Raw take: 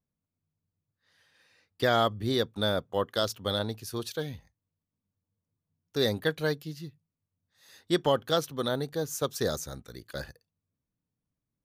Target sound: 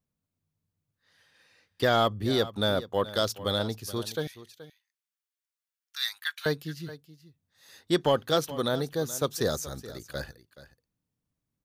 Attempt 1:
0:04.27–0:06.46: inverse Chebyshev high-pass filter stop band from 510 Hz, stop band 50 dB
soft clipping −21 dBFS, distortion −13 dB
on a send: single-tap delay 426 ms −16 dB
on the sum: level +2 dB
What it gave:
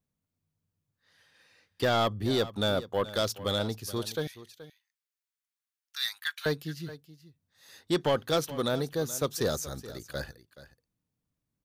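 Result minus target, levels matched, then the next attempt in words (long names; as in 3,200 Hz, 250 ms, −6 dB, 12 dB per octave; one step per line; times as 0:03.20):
soft clipping: distortion +11 dB
0:04.27–0:06.46: inverse Chebyshev high-pass filter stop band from 510 Hz, stop band 50 dB
soft clipping −13 dBFS, distortion −24 dB
on a send: single-tap delay 426 ms −16 dB
on the sum: level +2 dB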